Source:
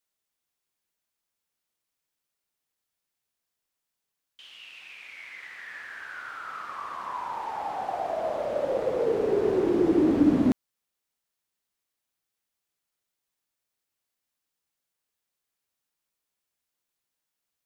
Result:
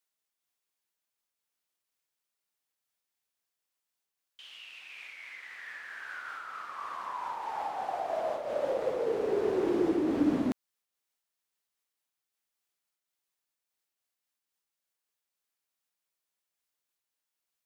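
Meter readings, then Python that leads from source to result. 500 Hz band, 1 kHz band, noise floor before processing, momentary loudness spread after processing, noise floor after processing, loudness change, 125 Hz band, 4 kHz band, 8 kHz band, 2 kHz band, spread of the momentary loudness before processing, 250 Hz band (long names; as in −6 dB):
−4.5 dB, −3.0 dB, −85 dBFS, 17 LU, below −85 dBFS, −5.5 dB, −9.0 dB, −2.0 dB, can't be measured, −2.5 dB, 20 LU, −6.5 dB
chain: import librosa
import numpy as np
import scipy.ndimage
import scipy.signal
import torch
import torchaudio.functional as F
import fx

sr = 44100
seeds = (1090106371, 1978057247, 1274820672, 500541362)

y = fx.low_shelf(x, sr, hz=290.0, db=-8.0)
y = fx.am_noise(y, sr, seeds[0], hz=5.7, depth_pct=55)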